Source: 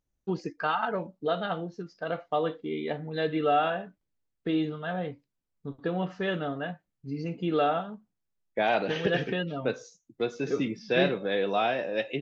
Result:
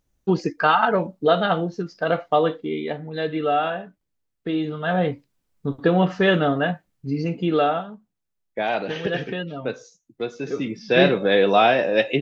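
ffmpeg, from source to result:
-af "volume=28.5dB,afade=t=out:st=2.15:d=0.83:silence=0.421697,afade=t=in:st=4.63:d=0.4:silence=0.354813,afade=t=out:st=6.69:d=1.25:silence=0.298538,afade=t=in:st=10.6:d=0.65:silence=0.354813"

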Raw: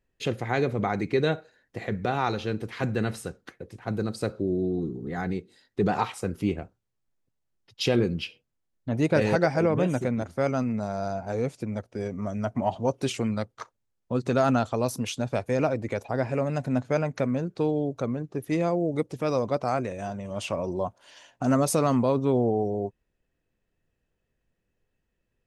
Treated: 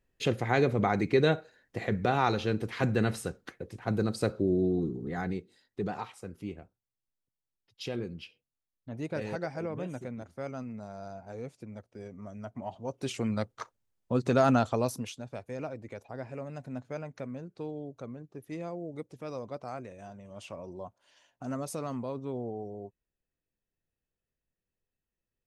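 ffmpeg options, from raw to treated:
-af "volume=11.5dB,afade=t=out:st=4.65:d=1.39:silence=0.237137,afade=t=in:st=12.84:d=0.64:silence=0.266073,afade=t=out:st=14.72:d=0.46:silence=0.251189"

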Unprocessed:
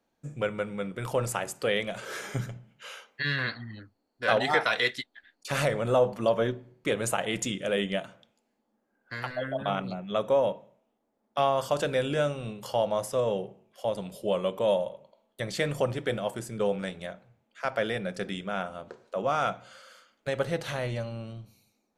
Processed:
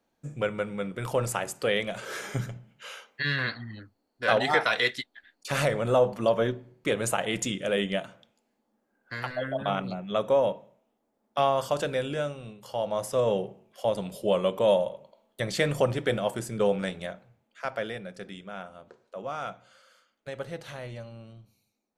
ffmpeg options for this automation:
-af "volume=12dB,afade=t=out:st=11.5:d=1.12:silence=0.354813,afade=t=in:st=12.62:d=0.69:silence=0.281838,afade=t=out:st=16.92:d=1.16:silence=0.298538"

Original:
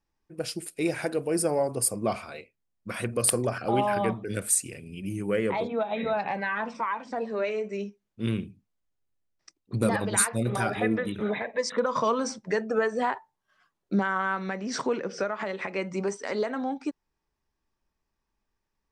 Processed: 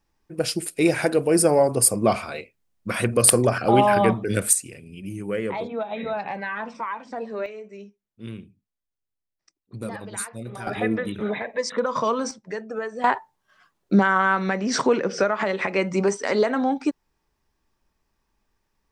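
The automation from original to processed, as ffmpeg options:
-af "asetnsamples=n=441:p=0,asendcmd='4.53 volume volume -0.5dB;7.46 volume volume -8dB;10.67 volume volume 2dB;12.31 volume volume -4.5dB;13.04 volume volume 8dB',volume=8dB"

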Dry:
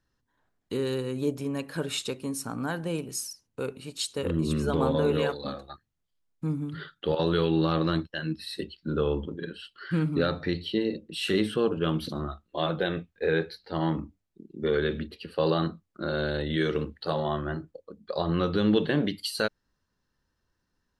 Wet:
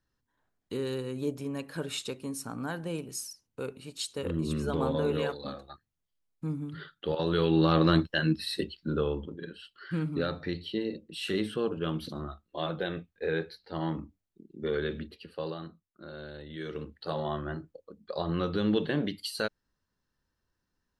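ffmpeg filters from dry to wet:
-af "volume=16dB,afade=t=in:st=7.24:d=0.94:silence=0.334965,afade=t=out:st=8.18:d=0.98:silence=0.298538,afade=t=out:st=15.11:d=0.47:silence=0.334965,afade=t=in:st=16.54:d=0.67:silence=0.298538"

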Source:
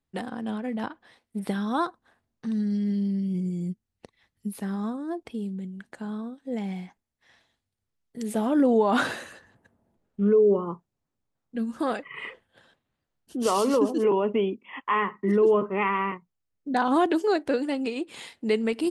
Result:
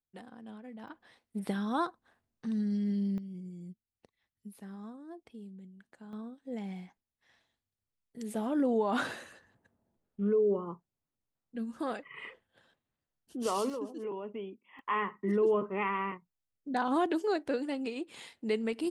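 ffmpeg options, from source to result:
-af "asetnsamples=n=441:p=0,asendcmd='0.88 volume volume -5dB;3.18 volume volume -15dB;6.13 volume volume -8dB;13.7 volume volume -16dB;14.79 volume volume -7dB',volume=-16dB"

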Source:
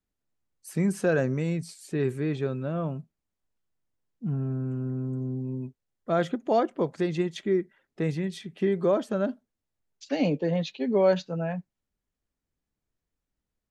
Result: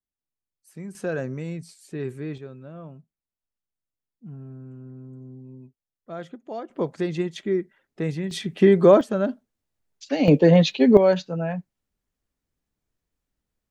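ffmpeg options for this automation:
-af "asetnsamples=n=441:p=0,asendcmd='0.95 volume volume -4dB;2.38 volume volume -10.5dB;6.7 volume volume 1dB;8.31 volume volume 10dB;9.01 volume volume 3.5dB;10.28 volume volume 12dB;10.97 volume volume 3dB',volume=-12dB"

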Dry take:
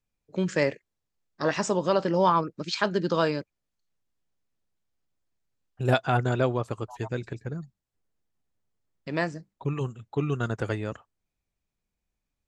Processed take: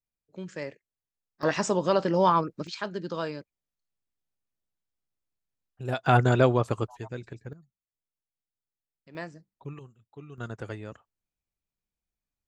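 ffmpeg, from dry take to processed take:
-af "asetnsamples=n=441:p=0,asendcmd='1.43 volume volume 0dB;2.67 volume volume -8dB;6.06 volume volume 4dB;6.87 volume volume -6dB;7.53 volume volume -18dB;9.15 volume volume -10.5dB;9.79 volume volume -18dB;10.38 volume volume -8dB',volume=-12dB"

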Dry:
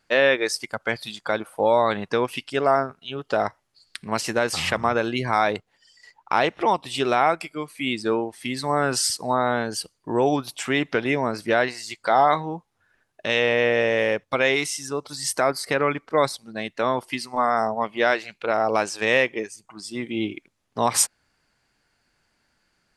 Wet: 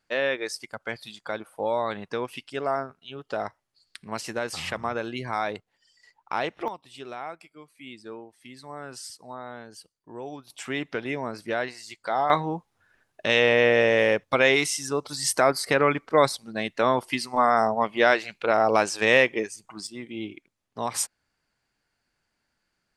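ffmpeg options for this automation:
-af "asetnsamples=n=441:p=0,asendcmd='6.68 volume volume -17dB;10.5 volume volume -7.5dB;12.3 volume volume 1dB;19.87 volume volume -8dB',volume=-7.5dB"

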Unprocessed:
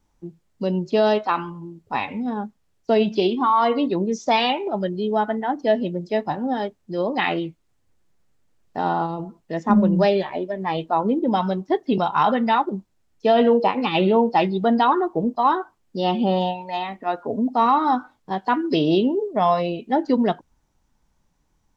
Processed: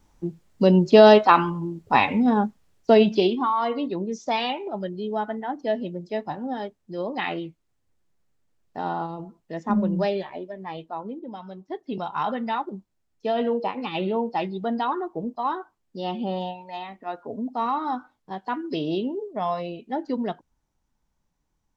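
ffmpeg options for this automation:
-af "volume=17dB,afade=t=out:st=2.44:d=1.11:silence=0.237137,afade=t=out:st=9.97:d=1.44:silence=0.237137,afade=t=in:st=11.41:d=0.76:silence=0.298538"

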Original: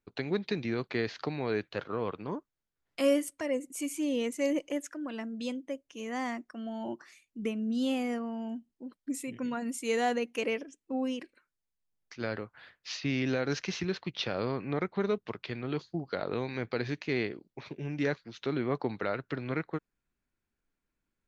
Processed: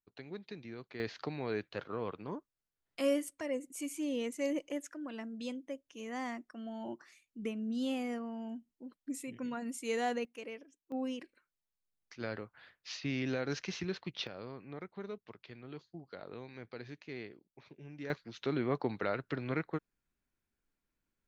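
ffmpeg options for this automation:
-af "asetnsamples=n=441:p=0,asendcmd='1 volume volume -5dB;10.25 volume volume -13.5dB;10.92 volume volume -5dB;14.27 volume volume -13.5dB;18.1 volume volume -2dB',volume=-14dB"

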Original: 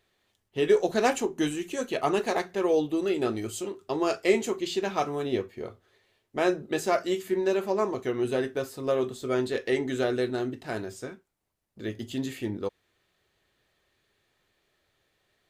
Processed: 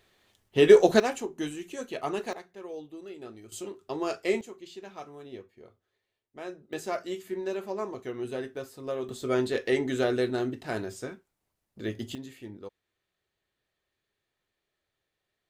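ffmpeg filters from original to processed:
-af "asetnsamples=n=441:p=0,asendcmd='1 volume volume -6dB;2.33 volume volume -16dB;3.52 volume volume -4.5dB;4.41 volume volume -15dB;6.73 volume volume -7dB;9.09 volume volume 0.5dB;12.15 volume volume -11dB',volume=6dB"

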